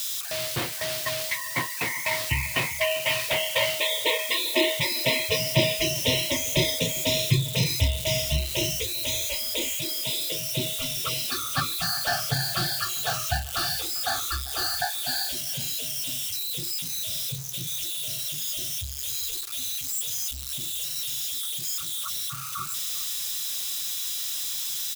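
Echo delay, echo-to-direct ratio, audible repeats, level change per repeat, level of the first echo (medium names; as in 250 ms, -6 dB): 397 ms, -18.5 dB, 2, -10.5 dB, -19.0 dB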